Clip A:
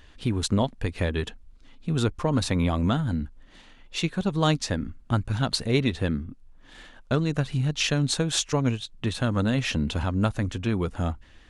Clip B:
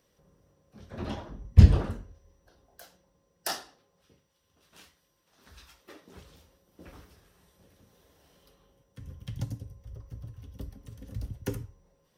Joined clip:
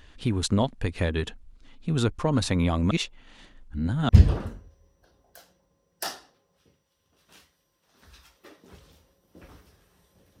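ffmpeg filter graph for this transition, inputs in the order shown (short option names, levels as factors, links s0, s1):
-filter_complex "[0:a]apad=whole_dur=10.4,atrim=end=10.4,asplit=2[s0][s1];[s0]atrim=end=2.912[s2];[s1]atrim=start=2.908:end=4.092,asetpts=PTS-STARTPTS,areverse[s3];[1:a]atrim=start=1.528:end=7.84[s4];[s2][s3]acrossfade=d=0.004:c1=hsin:c2=hsin[s5];[s5][s4]acrossfade=d=0.004:c1=hsin:c2=hsin"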